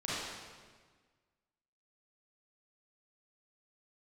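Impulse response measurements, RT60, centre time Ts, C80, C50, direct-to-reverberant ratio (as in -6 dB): 1.5 s, 0.125 s, -1.0 dB, -5.0 dB, -9.5 dB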